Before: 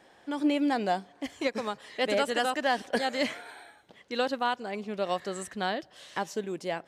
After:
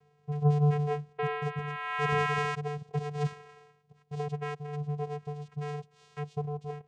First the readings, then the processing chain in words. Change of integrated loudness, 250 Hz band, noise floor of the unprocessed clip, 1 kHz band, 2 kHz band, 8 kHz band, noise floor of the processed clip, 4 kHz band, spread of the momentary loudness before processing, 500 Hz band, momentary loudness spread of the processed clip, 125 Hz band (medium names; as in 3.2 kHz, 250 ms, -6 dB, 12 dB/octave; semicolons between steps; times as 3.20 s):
-1.5 dB, -5.5 dB, -59 dBFS, -3.5 dB, -3.5 dB, -11.0 dB, -67 dBFS, -11.0 dB, 10 LU, -4.5 dB, 12 LU, +18.5 dB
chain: painted sound rise, 1.18–2.55 s, 850–2200 Hz -23 dBFS; rotary cabinet horn 0.8 Hz; vocoder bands 4, square 147 Hz; trim -1.5 dB